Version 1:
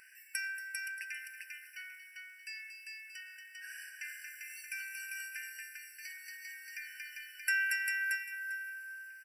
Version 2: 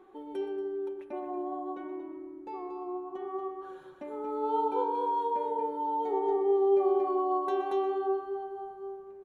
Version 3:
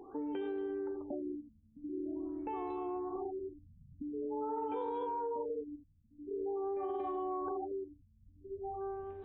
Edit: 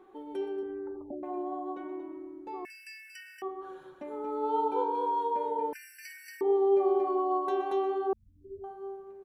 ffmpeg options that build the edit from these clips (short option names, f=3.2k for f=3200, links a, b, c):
-filter_complex "[2:a]asplit=2[a][b];[0:a]asplit=2[c][d];[1:a]asplit=5[e][f][g][h][i];[e]atrim=end=0.632[j];[a]atrim=start=0.628:end=1.232[k];[f]atrim=start=1.228:end=2.652[l];[c]atrim=start=2.648:end=3.422[m];[g]atrim=start=3.418:end=5.732[n];[d]atrim=start=5.728:end=6.412[o];[h]atrim=start=6.408:end=8.132[p];[b]atrim=start=8.128:end=8.642[q];[i]atrim=start=8.638[r];[j][k]acrossfade=d=0.004:c1=hsin:c2=hsin[s];[s][l]acrossfade=d=0.004:c1=hsin:c2=hsin[t];[t][m]acrossfade=d=0.004:c1=hsin:c2=hsin[u];[u][n]acrossfade=d=0.004:c1=hsin:c2=hsin[v];[v][o]acrossfade=d=0.004:c1=hsin:c2=hsin[w];[w][p]acrossfade=d=0.004:c1=hsin:c2=hsin[x];[x][q]acrossfade=d=0.004:c1=hsin:c2=hsin[y];[y][r]acrossfade=d=0.004:c1=hsin:c2=hsin"